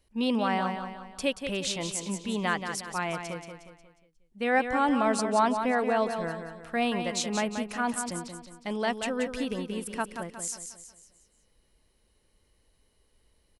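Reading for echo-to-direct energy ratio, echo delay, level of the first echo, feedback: -6.5 dB, 180 ms, -7.5 dB, 44%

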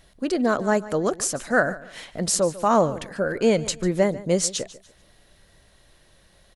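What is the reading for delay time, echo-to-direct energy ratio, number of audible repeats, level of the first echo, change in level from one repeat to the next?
146 ms, -17.0 dB, 2, -17.5 dB, -10.5 dB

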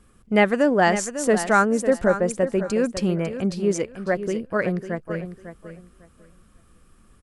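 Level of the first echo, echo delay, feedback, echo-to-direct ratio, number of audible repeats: -11.0 dB, 550 ms, 21%, -11.0 dB, 2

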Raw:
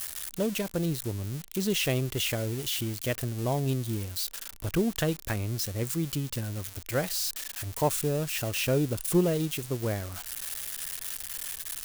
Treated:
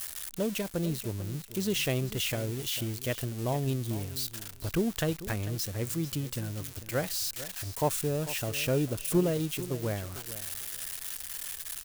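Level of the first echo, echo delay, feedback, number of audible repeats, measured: -14.5 dB, 446 ms, 18%, 2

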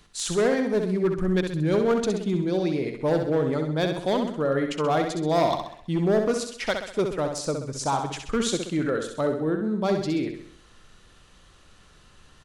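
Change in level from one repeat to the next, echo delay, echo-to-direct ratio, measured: -6.0 dB, 65 ms, -5.0 dB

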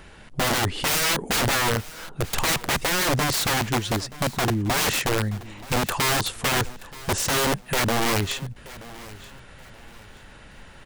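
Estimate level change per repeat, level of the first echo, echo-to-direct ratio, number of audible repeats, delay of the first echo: -10.5 dB, -19.0 dB, -18.5 dB, 2, 928 ms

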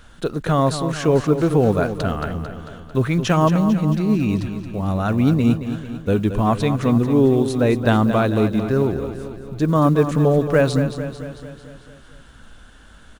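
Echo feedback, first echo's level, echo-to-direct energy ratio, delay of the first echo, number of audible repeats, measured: 58%, -10.0 dB, -8.0 dB, 223 ms, 6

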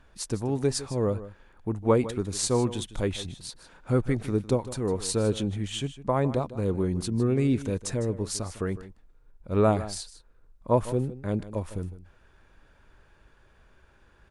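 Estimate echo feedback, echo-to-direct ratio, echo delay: no regular repeats, -15.0 dB, 155 ms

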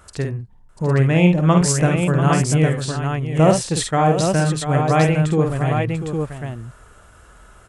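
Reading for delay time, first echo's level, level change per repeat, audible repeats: 51 ms, -5.0 dB, no regular repeats, 3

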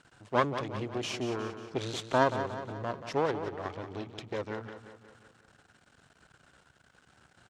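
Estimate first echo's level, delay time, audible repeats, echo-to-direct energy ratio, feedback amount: -10.0 dB, 180 ms, 5, -8.5 dB, 53%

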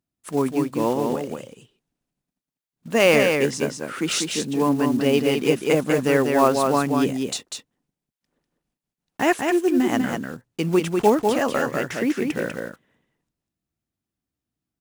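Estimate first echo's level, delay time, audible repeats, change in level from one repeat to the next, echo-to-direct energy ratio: -4.5 dB, 196 ms, 1, no regular repeats, -4.5 dB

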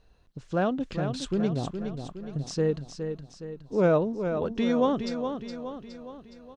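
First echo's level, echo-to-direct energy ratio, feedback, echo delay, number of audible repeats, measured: -7.5 dB, -6.0 dB, 51%, 416 ms, 5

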